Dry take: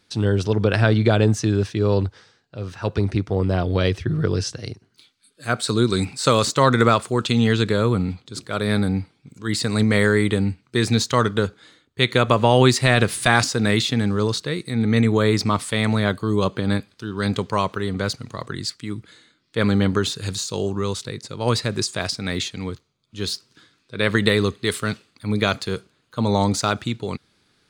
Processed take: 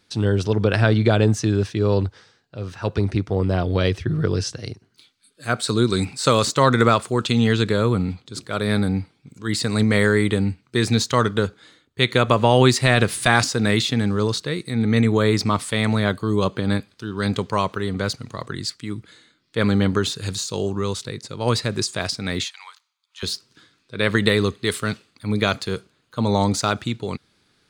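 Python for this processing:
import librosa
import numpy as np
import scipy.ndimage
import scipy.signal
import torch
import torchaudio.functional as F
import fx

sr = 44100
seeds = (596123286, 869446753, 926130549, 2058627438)

y = fx.ellip_highpass(x, sr, hz=880.0, order=4, stop_db=70, at=(22.44, 23.23))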